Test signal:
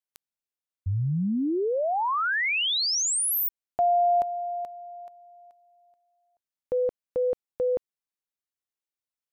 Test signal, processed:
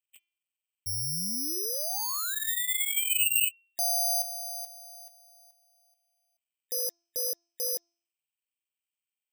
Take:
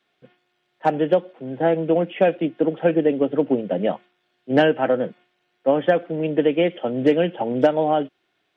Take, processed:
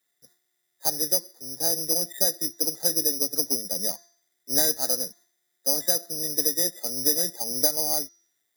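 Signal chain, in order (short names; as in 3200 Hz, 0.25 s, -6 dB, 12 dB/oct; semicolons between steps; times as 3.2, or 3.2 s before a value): nonlinear frequency compression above 1700 Hz 4:1; careless resampling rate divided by 8×, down none, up zero stuff; de-hum 341.4 Hz, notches 19; gain -15 dB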